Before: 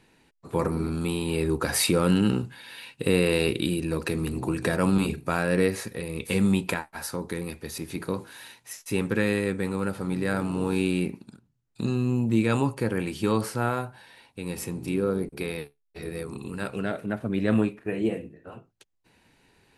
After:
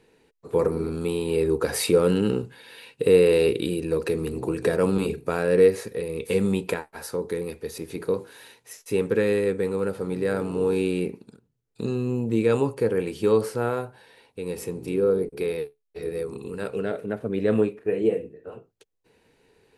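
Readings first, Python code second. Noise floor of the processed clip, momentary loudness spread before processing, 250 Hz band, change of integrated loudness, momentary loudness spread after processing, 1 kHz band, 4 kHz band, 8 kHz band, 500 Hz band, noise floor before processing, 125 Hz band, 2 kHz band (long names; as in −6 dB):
−71 dBFS, 14 LU, −1.5 dB, +2.5 dB, 14 LU, −2.0 dB, −3.0 dB, −3.0 dB, +7.0 dB, −70 dBFS, −2.5 dB, −3.0 dB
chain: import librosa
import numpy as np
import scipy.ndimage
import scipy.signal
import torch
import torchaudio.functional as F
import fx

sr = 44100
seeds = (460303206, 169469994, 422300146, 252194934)

y = fx.peak_eq(x, sr, hz=450.0, db=13.5, octaves=0.48)
y = F.gain(torch.from_numpy(y), -3.0).numpy()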